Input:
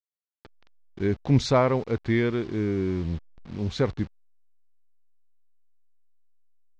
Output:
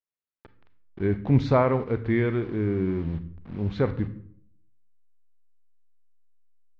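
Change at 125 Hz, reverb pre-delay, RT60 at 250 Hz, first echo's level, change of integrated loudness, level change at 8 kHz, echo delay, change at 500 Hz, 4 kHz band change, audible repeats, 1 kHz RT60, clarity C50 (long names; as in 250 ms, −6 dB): +1.0 dB, 29 ms, 0.75 s, no echo audible, +0.5 dB, can't be measured, no echo audible, 0.0 dB, −9.5 dB, no echo audible, 0.60 s, 13.0 dB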